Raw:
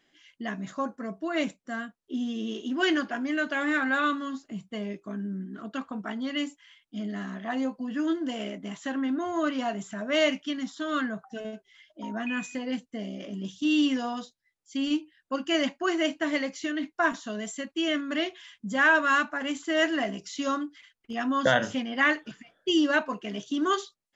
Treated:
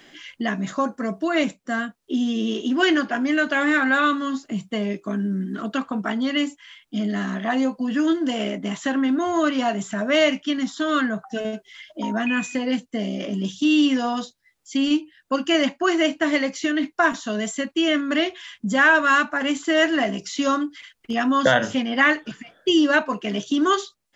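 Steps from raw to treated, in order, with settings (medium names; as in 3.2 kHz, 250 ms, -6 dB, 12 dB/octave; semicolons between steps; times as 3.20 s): three bands compressed up and down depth 40%; trim +7 dB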